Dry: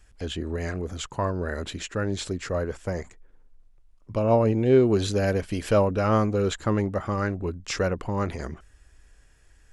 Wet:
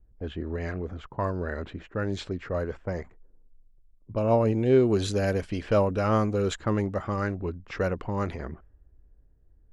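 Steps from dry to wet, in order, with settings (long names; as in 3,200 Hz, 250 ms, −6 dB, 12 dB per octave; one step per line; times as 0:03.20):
low-pass that shuts in the quiet parts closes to 370 Hz, open at −21 dBFS
level −2 dB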